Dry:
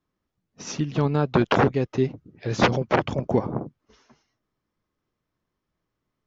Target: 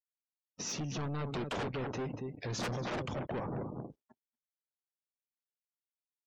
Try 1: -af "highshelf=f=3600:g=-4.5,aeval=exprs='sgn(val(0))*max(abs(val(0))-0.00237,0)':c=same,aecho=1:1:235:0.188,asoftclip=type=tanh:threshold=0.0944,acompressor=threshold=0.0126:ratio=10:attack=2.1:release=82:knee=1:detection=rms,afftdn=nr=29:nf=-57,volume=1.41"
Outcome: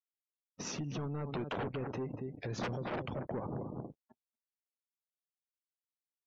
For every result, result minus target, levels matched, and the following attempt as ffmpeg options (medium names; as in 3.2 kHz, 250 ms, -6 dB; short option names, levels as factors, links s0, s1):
saturation: distortion -6 dB; 8 kHz band -3.5 dB
-af "highshelf=f=3600:g=-4.5,aeval=exprs='sgn(val(0))*max(abs(val(0))-0.00237,0)':c=same,aecho=1:1:235:0.188,asoftclip=type=tanh:threshold=0.0316,acompressor=threshold=0.0126:ratio=10:attack=2.1:release=82:knee=1:detection=rms,afftdn=nr=29:nf=-57,volume=1.41"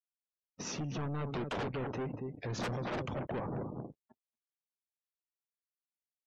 8 kHz band -4.0 dB
-af "highshelf=f=3600:g=5.5,aeval=exprs='sgn(val(0))*max(abs(val(0))-0.00237,0)':c=same,aecho=1:1:235:0.188,asoftclip=type=tanh:threshold=0.0316,acompressor=threshold=0.0126:ratio=10:attack=2.1:release=82:knee=1:detection=rms,afftdn=nr=29:nf=-57,volume=1.41"